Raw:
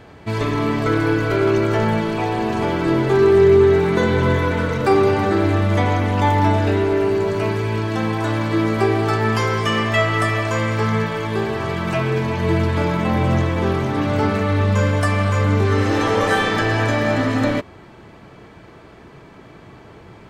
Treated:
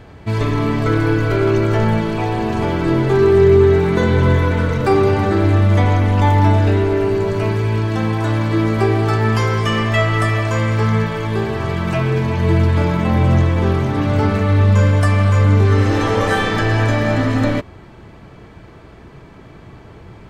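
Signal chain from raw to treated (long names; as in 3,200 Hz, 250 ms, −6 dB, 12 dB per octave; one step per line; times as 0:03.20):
low-shelf EQ 110 Hz +11 dB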